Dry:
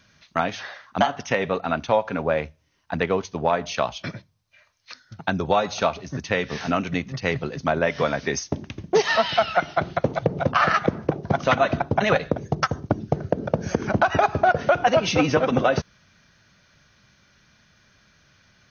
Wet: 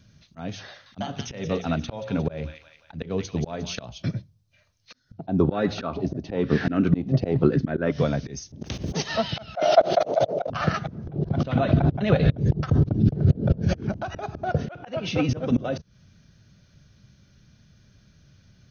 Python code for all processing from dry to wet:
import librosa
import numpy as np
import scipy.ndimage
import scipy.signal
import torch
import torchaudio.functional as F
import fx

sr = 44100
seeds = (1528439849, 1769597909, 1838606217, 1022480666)

y = fx.chain(x, sr, fx.peak_eq(hz=3600.0, db=4.0, octaves=1.6),
    fx.hum_notches(base_hz=60, count=9),
    fx.echo_wet_highpass(ms=178, feedback_pct=49, hz=2000.0, wet_db=-7.5), at=(0.68, 3.85))
y = fx.chain(y, sr, fx.lowpass(hz=4900.0, slope=24),
    fx.peak_eq(hz=320.0, db=12.5, octaves=1.3),
    fx.bell_lfo(hz=1.0, low_hz=640.0, high_hz=1800.0, db=16), at=(5.18, 7.92))
y = fx.spec_clip(y, sr, under_db=21, at=(8.61, 9.02), fade=0.02)
y = fx.highpass(y, sr, hz=51.0, slope=24, at=(8.61, 9.02), fade=0.02)
y = fx.env_flatten(y, sr, amount_pct=50, at=(8.61, 9.02), fade=0.02)
y = fx.chain(y, sr, fx.highpass_res(hz=620.0, q=5.8),
    fx.sustainer(db_per_s=48.0), at=(9.55, 10.5))
y = fx.chain(y, sr, fx.lowpass(hz=4400.0, slope=24),
    fx.pre_swell(db_per_s=47.0), at=(11.07, 13.89))
y = fx.chain(y, sr, fx.lowpass(hz=2500.0, slope=12),
    fx.tilt_eq(slope=3.0), at=(14.66, 15.29))
y = fx.graphic_eq(y, sr, hz=(125, 1000, 2000), db=(3, -7, -6))
y = fx.auto_swell(y, sr, attack_ms=219.0)
y = fx.low_shelf(y, sr, hz=280.0, db=10.5)
y = F.gain(torch.from_numpy(y), -2.5).numpy()